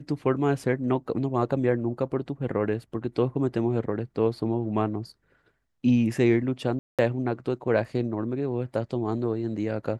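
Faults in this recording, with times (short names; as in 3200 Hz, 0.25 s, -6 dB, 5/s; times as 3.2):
6.79–6.99 gap 0.197 s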